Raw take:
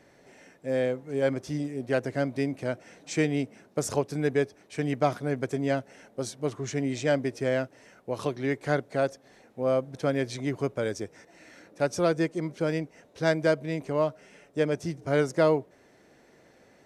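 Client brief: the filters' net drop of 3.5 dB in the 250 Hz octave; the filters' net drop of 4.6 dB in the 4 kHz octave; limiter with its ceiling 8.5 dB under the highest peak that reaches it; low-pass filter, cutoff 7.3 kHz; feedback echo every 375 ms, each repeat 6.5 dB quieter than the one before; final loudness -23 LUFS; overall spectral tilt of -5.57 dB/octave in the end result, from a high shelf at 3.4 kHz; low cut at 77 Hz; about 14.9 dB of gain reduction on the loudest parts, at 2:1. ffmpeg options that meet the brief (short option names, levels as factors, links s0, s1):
-af "highpass=77,lowpass=7300,equalizer=f=250:t=o:g=-4.5,highshelf=f=3400:g=3.5,equalizer=f=4000:t=o:g=-8.5,acompressor=threshold=0.00398:ratio=2,alimiter=level_in=3.16:limit=0.0631:level=0:latency=1,volume=0.316,aecho=1:1:375|750|1125|1500|1875|2250:0.473|0.222|0.105|0.0491|0.0231|0.0109,volume=12.6"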